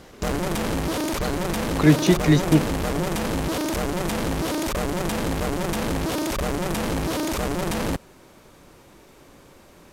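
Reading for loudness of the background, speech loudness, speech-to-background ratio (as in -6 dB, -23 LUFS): -26.0 LUFS, -19.5 LUFS, 6.5 dB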